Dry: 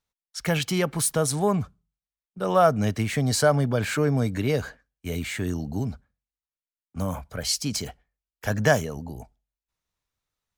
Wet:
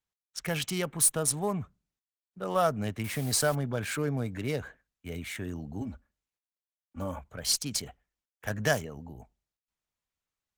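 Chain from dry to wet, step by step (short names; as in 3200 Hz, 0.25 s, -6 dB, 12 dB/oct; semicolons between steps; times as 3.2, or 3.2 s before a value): Wiener smoothing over 9 samples; high shelf 2600 Hz +11.5 dB; 5.81–7.19 comb 3.5 ms, depth 91%; added harmonics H 8 -34 dB, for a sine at -0.5 dBFS; 3.04–3.55 requantised 6-bit, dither triangular; gain -8 dB; Opus 24 kbps 48000 Hz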